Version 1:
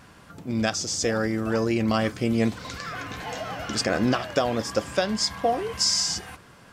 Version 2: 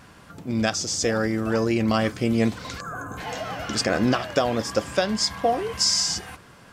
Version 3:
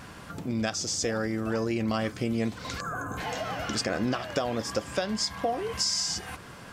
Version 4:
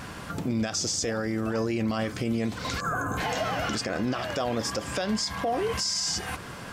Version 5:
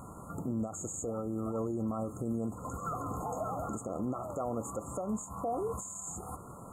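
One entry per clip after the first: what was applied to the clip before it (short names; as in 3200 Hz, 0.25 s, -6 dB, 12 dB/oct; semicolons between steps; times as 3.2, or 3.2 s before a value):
spectral gain 2.8–3.18, 1700–6200 Hz -24 dB; gain +1.5 dB
compressor 2:1, threshold -38 dBFS, peak gain reduction 12 dB; gain +4 dB
limiter -25 dBFS, peak gain reduction 10 dB; gain +5.5 dB
brick-wall FIR band-stop 1400–6500 Hz; gain -6.5 dB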